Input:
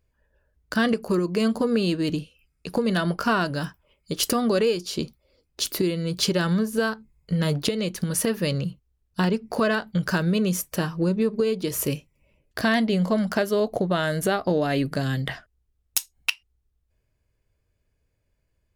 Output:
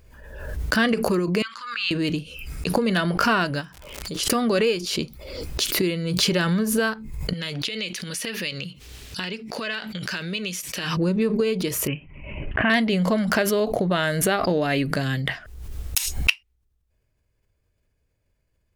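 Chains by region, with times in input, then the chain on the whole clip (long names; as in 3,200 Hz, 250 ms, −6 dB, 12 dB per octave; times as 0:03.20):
0:01.42–0:01.91: elliptic high-pass filter 1,200 Hz + high-frequency loss of the air 140 metres
0:03.60–0:04.26: low-pass filter 10,000 Hz + downward compressor 1.5 to 1, threshold −57 dBFS + surface crackle 150 per second −49 dBFS
0:07.33–0:10.97: meter weighting curve D + downward compressor 3 to 1, threshold −31 dBFS
0:11.87–0:12.70: Chebyshev low-pass filter 3,000 Hz, order 6 + parametric band 500 Hz −10 dB 0.35 octaves
whole clip: dynamic equaliser 2,300 Hz, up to +7 dB, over −44 dBFS, Q 1.4; background raised ahead of every attack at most 45 dB per second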